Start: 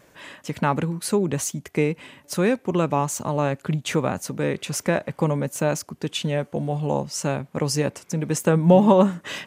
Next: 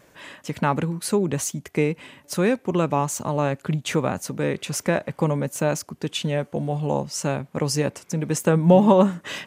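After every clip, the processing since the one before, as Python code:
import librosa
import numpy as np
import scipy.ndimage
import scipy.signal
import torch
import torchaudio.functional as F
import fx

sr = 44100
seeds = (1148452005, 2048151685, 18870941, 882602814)

y = x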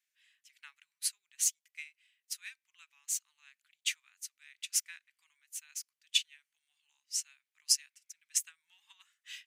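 y = scipy.signal.sosfilt(scipy.signal.cheby2(4, 60, 600.0, 'highpass', fs=sr, output='sos'), x)
y = fx.quant_float(y, sr, bits=6)
y = fx.upward_expand(y, sr, threshold_db=-42.0, expansion=2.5)
y = y * 10.0 ** (2.5 / 20.0)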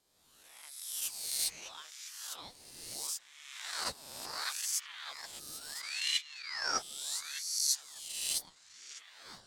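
y = fx.spec_swells(x, sr, rise_s=1.31)
y = fx.echo_stepped(y, sr, ms=604, hz=3000.0, octaves=-0.7, feedback_pct=70, wet_db=0)
y = fx.ring_lfo(y, sr, carrier_hz=1400.0, swing_pct=60, hz=0.73)
y = y * 10.0 ** (-4.5 / 20.0)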